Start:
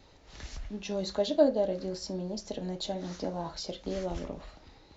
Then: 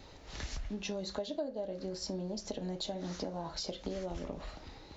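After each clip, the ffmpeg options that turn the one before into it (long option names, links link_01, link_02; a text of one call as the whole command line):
ffmpeg -i in.wav -af "acompressor=threshold=-40dB:ratio=6,volume=4.5dB" out.wav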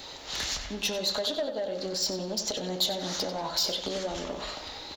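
ffmpeg -i in.wav -filter_complex "[0:a]asplit=2[link_01][link_02];[link_02]highpass=frequency=720:poles=1,volume=16dB,asoftclip=type=tanh:threshold=-23.5dB[link_03];[link_01][link_03]amix=inputs=2:normalize=0,lowpass=frequency=6600:poles=1,volume=-6dB,aexciter=amount=2.6:drive=3:freq=3200,asplit=2[link_04][link_05];[link_05]adelay=93,lowpass=frequency=4500:poles=1,volume=-8.5dB,asplit=2[link_06][link_07];[link_07]adelay=93,lowpass=frequency=4500:poles=1,volume=0.53,asplit=2[link_08][link_09];[link_09]adelay=93,lowpass=frequency=4500:poles=1,volume=0.53,asplit=2[link_10][link_11];[link_11]adelay=93,lowpass=frequency=4500:poles=1,volume=0.53,asplit=2[link_12][link_13];[link_13]adelay=93,lowpass=frequency=4500:poles=1,volume=0.53,asplit=2[link_14][link_15];[link_15]adelay=93,lowpass=frequency=4500:poles=1,volume=0.53[link_16];[link_04][link_06][link_08][link_10][link_12][link_14][link_16]amix=inputs=7:normalize=0,volume=1.5dB" out.wav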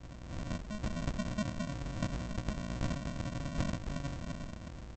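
ffmpeg -i in.wav -af "aeval=exprs='val(0)+0.00708*(sin(2*PI*60*n/s)+sin(2*PI*2*60*n/s)/2+sin(2*PI*3*60*n/s)/3+sin(2*PI*4*60*n/s)/4+sin(2*PI*5*60*n/s)/5)':channel_layout=same,aresample=16000,acrusher=samples=38:mix=1:aa=0.000001,aresample=44100,volume=-5.5dB" out.wav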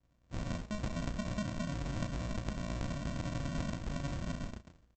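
ffmpeg -i in.wav -filter_complex "[0:a]agate=range=-30dB:threshold=-41dB:ratio=16:detection=peak,asplit=2[link_01][link_02];[link_02]adelay=35,volume=-9.5dB[link_03];[link_01][link_03]amix=inputs=2:normalize=0,acompressor=threshold=-38dB:ratio=6,volume=4.5dB" out.wav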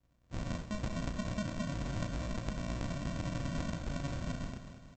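ffmpeg -i in.wav -af "aecho=1:1:208|416|624|832|1040|1248|1456:0.266|0.154|0.0895|0.0519|0.0301|0.0175|0.0101" out.wav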